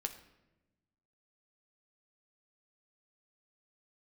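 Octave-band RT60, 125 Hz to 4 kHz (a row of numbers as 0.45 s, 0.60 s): 1.7 s, 1.5 s, 1.2 s, 0.85 s, 0.85 s, 0.65 s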